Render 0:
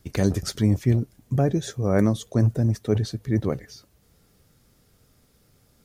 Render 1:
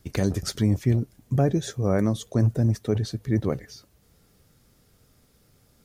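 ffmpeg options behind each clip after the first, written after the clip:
ffmpeg -i in.wav -af "alimiter=limit=-11.5dB:level=0:latency=1:release=219" out.wav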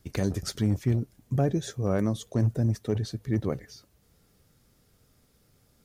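ffmpeg -i in.wav -af "asoftclip=type=hard:threshold=-12.5dB,volume=-3.5dB" out.wav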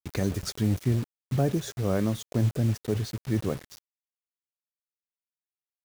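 ffmpeg -i in.wav -af "acrusher=bits=6:mix=0:aa=0.000001" out.wav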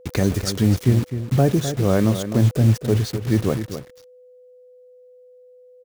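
ffmpeg -i in.wav -filter_complex "[0:a]asplit=2[link_01][link_02];[link_02]adelay=256.6,volume=-10dB,highshelf=frequency=4000:gain=-5.77[link_03];[link_01][link_03]amix=inputs=2:normalize=0,aeval=exprs='val(0)+0.002*sin(2*PI*500*n/s)':channel_layout=same,volume=8dB" out.wav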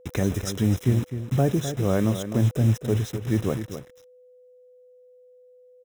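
ffmpeg -i in.wav -af "asuperstop=centerf=4500:order=8:qfactor=5.2,volume=-4.5dB" out.wav

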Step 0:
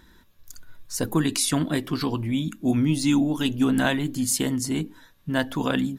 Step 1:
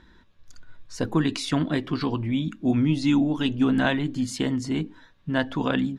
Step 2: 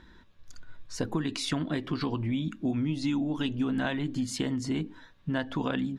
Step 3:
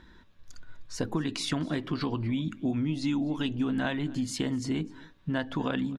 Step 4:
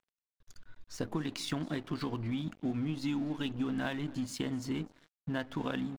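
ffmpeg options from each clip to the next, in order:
ffmpeg -i in.wav -af "lowpass=4000" out.wav
ffmpeg -i in.wav -af "acompressor=threshold=-27dB:ratio=4" out.wav
ffmpeg -i in.wav -af "aecho=1:1:251:0.0708" out.wav
ffmpeg -i in.wav -af "aeval=exprs='sgn(val(0))*max(abs(val(0))-0.00562,0)':channel_layout=same,volume=-4dB" out.wav

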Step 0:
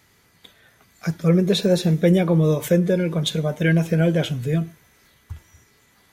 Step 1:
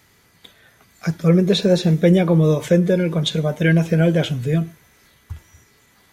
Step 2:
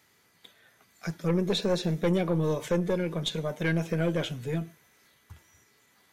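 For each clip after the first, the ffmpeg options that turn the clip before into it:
ffmpeg -i in.wav -filter_complex "[0:a]acrossover=split=7800[link_01][link_02];[link_02]acompressor=threshold=-51dB:ratio=4:attack=1:release=60[link_03];[link_01][link_03]amix=inputs=2:normalize=0,volume=2.5dB" out.wav
ffmpeg -i in.wav -af "highpass=frequency=220:poles=1,aeval=exprs='(tanh(3.98*val(0)+0.4)-tanh(0.4))/3.98':channel_layout=same,volume=-6.5dB" out.wav

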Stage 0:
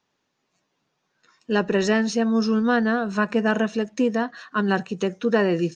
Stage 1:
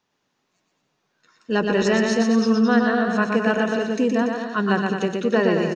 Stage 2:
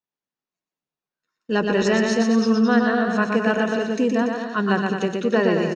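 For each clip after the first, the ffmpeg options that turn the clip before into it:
ffmpeg -i in.wav -af "aecho=1:1:120|216|292.8|354.2|403.4:0.631|0.398|0.251|0.158|0.1" out.wav
ffmpeg -i in.wav -af "agate=range=-22dB:threshold=-43dB:ratio=16:detection=peak" out.wav

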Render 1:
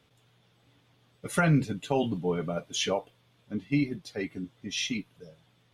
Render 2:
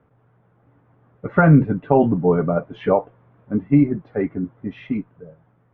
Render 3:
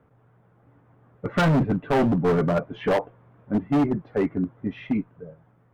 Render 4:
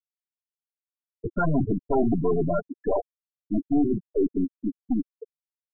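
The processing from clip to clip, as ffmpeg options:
ffmpeg -i in.wav -af "lowpass=frequency=1500:width=0.5412,lowpass=frequency=1500:width=1.3066,dynaudnorm=framelen=210:gausssize=11:maxgain=5dB,volume=7dB" out.wav
ffmpeg -i in.wav -af "asoftclip=type=hard:threshold=-17dB" out.wav
ffmpeg -i in.wav -af "aeval=exprs='(tanh(17.8*val(0)+0.35)-tanh(0.35))/17.8':channel_layout=same,aecho=1:1:2.9:0.34,afftfilt=real='re*gte(hypot(re,im),0.126)':imag='im*gte(hypot(re,im),0.126)':win_size=1024:overlap=0.75,volume=5.5dB" out.wav

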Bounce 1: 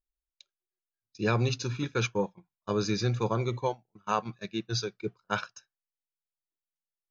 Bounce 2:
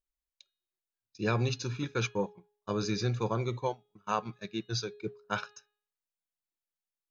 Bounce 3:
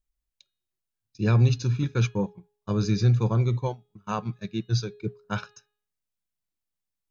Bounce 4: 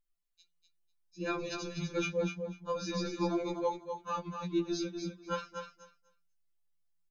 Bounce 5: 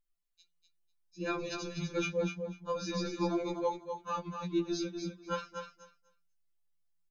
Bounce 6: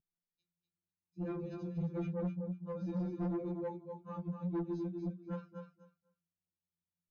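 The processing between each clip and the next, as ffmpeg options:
ffmpeg -i in.wav -af "bandreject=frequency=416.1:width_type=h:width=4,bandreject=frequency=832.2:width_type=h:width=4,bandreject=frequency=1248.3:width_type=h:width=4,bandreject=frequency=1664.4:width_type=h:width=4,bandreject=frequency=2080.5:width_type=h:width=4,bandreject=frequency=2496.6:width_type=h:width=4,bandreject=frequency=2912.7:width_type=h:width=4,bandreject=frequency=3328.8:width_type=h:width=4,bandreject=frequency=3744.9:width_type=h:width=4,bandreject=frequency=4161:width_type=h:width=4,volume=-2.5dB" out.wav
ffmpeg -i in.wav -af "bass=frequency=250:gain=13,treble=frequency=4000:gain=1" out.wav
ffmpeg -i in.wav -filter_complex "[0:a]flanger=delay=9.5:depth=2.4:regen=63:speed=0.75:shape=triangular,asplit=2[link_01][link_02];[link_02]aecho=0:1:247|494|741:0.473|0.0804|0.0137[link_03];[link_01][link_03]amix=inputs=2:normalize=0,afftfilt=real='re*2.83*eq(mod(b,8),0)':imag='im*2.83*eq(mod(b,8),0)':win_size=2048:overlap=0.75,volume=2dB" out.wav
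ffmpeg -i in.wav -af anull out.wav
ffmpeg -i in.wav -af "bandpass=frequency=160:width_type=q:width=1.3:csg=0,aresample=16000,asoftclip=type=tanh:threshold=-37.5dB,aresample=44100,volume=6dB" out.wav

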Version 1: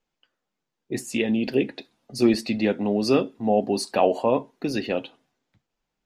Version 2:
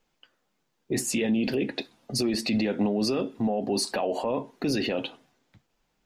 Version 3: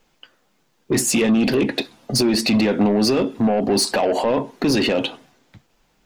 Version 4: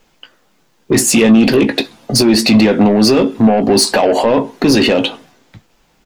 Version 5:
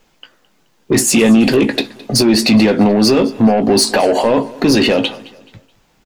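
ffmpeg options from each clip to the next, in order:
ffmpeg -i in.wav -af "acompressor=threshold=-24dB:ratio=6,alimiter=level_in=1.5dB:limit=-24dB:level=0:latency=1:release=17,volume=-1.5dB,volume=7.5dB" out.wav
ffmpeg -i in.wav -af "aeval=exprs='0.133*(cos(1*acos(clip(val(0)/0.133,-1,1)))-cos(1*PI/2))+0.0119*(cos(5*acos(clip(val(0)/0.133,-1,1)))-cos(5*PI/2))':channel_layout=same,volume=8dB" out.wav
ffmpeg -i in.wav -filter_complex "[0:a]asplit=2[link_01][link_02];[link_02]adelay=18,volume=-11.5dB[link_03];[link_01][link_03]amix=inputs=2:normalize=0,volume=7dB" out.wav
ffmpeg -i in.wav -af "aecho=1:1:214|428|642:0.0891|0.033|0.0122,volume=-1dB" out.wav

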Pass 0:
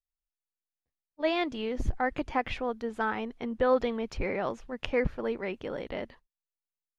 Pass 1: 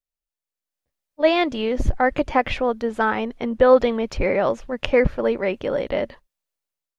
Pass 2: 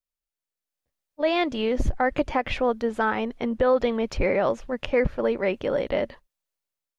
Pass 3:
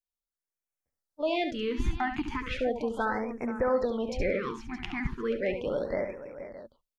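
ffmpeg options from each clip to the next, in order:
ffmpeg -i in.wav -af "equalizer=frequency=570:width=6.5:gain=7.5,dynaudnorm=framelen=300:gausssize=5:maxgain=9.5dB" out.wav
ffmpeg -i in.wav -af "alimiter=limit=-11dB:level=0:latency=1:release=179,volume=-1.5dB" out.wav
ffmpeg -i in.wav -filter_complex "[0:a]asplit=2[link_01][link_02];[link_02]aecho=0:1:70|478|618:0.376|0.224|0.188[link_03];[link_01][link_03]amix=inputs=2:normalize=0,afftfilt=real='re*(1-between(b*sr/1024,490*pow(3800/490,0.5+0.5*sin(2*PI*0.36*pts/sr))/1.41,490*pow(3800/490,0.5+0.5*sin(2*PI*0.36*pts/sr))*1.41))':imag='im*(1-between(b*sr/1024,490*pow(3800/490,0.5+0.5*sin(2*PI*0.36*pts/sr))/1.41,490*pow(3800/490,0.5+0.5*sin(2*PI*0.36*pts/sr))*1.41))':win_size=1024:overlap=0.75,volume=-6dB" out.wav

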